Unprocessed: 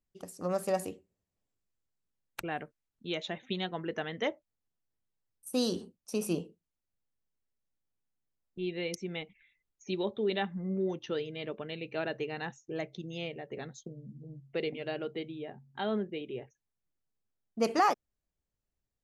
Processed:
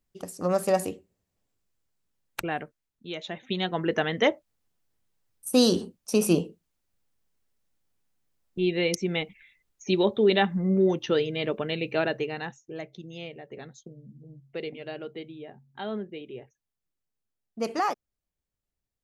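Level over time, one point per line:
0:02.40 +7 dB
0:03.13 −1 dB
0:03.86 +10 dB
0:11.90 +10 dB
0:12.76 −1 dB

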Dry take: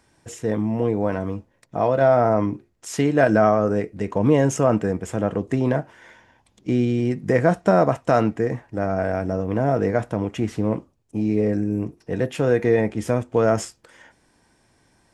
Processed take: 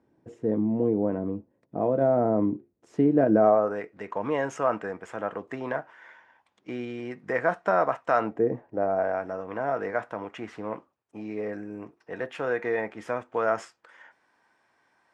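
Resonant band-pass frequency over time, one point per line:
resonant band-pass, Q 1.1
0:03.31 300 Hz
0:03.77 1,300 Hz
0:08.17 1,300 Hz
0:08.47 350 Hz
0:09.32 1,300 Hz

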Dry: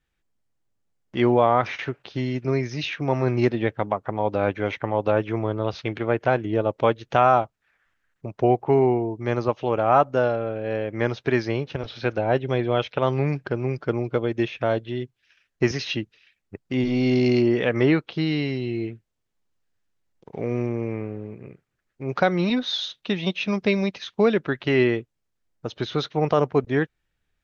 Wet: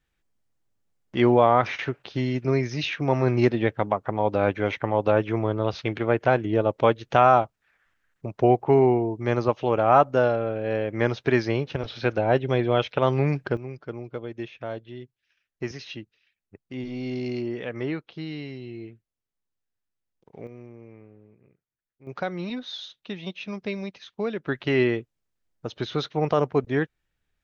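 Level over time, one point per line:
+0.5 dB
from 0:13.57 −10.5 dB
from 0:20.47 −18.5 dB
from 0:22.07 −9.5 dB
from 0:24.47 −2 dB

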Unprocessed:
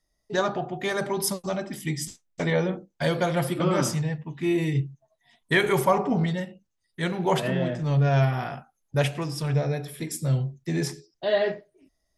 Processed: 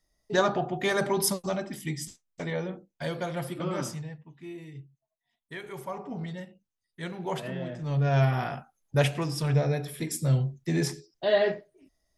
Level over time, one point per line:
0:01.19 +1 dB
0:02.48 −8 dB
0:03.81 −8 dB
0:04.65 −19 dB
0:05.63 −19 dB
0:06.41 −9 dB
0:07.65 −9 dB
0:08.33 0 dB

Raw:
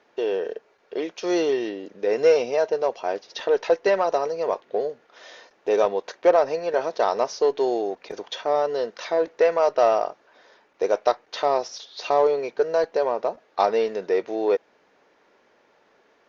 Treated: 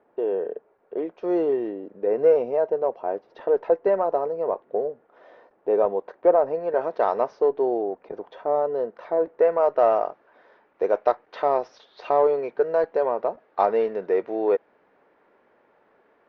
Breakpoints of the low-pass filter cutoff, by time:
0:06.49 1,000 Hz
0:07.09 1,900 Hz
0:07.55 1,000 Hz
0:09.17 1,000 Hz
0:10.02 1,800 Hz

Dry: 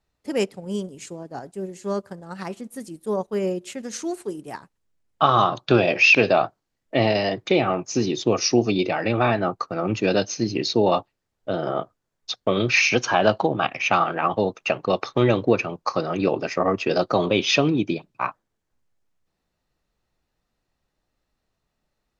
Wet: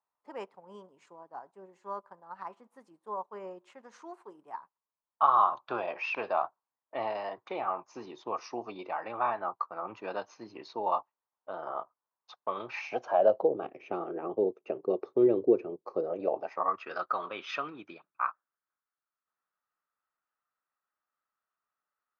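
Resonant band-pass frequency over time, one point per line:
resonant band-pass, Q 4.4
0:12.60 1,000 Hz
0:13.68 390 Hz
0:15.91 390 Hz
0:16.82 1,300 Hz

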